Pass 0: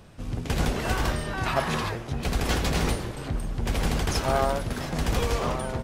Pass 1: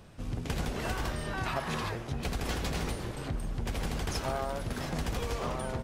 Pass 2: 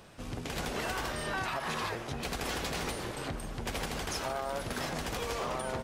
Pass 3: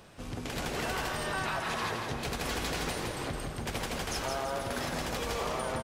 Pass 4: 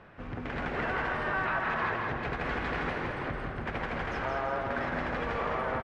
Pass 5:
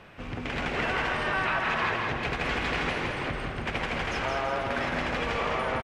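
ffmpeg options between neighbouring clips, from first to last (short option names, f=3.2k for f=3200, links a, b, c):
-af "acompressor=threshold=-26dB:ratio=6,volume=-3dB"
-af "lowshelf=f=230:g=-11.5,alimiter=level_in=4.5dB:limit=-24dB:level=0:latency=1:release=69,volume=-4.5dB,volume=4dB"
-af "aecho=1:1:166|332|498|664|830:0.596|0.238|0.0953|0.0381|0.0152"
-af "lowpass=f=1.8k:t=q:w=1.7,aecho=1:1:215:0.398"
-af "aexciter=amount=2.1:drive=7.4:freq=2.3k,aresample=32000,aresample=44100,volume=2.5dB"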